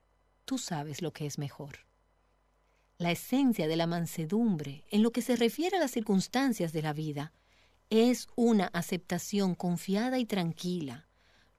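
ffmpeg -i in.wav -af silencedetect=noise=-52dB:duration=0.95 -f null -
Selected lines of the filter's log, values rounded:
silence_start: 1.82
silence_end: 3.00 | silence_duration: 1.18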